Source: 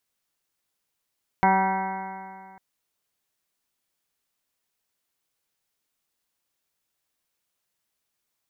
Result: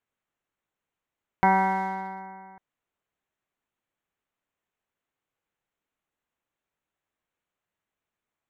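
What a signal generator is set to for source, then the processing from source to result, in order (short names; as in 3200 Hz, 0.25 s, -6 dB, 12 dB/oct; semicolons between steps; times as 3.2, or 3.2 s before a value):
stretched partials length 1.15 s, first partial 190 Hz, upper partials -6/-10.5/5.5/4/-10.5/-11/-4.5/-17/-8/-7 dB, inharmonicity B 0.00064, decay 2.18 s, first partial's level -23.5 dB
Wiener smoothing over 9 samples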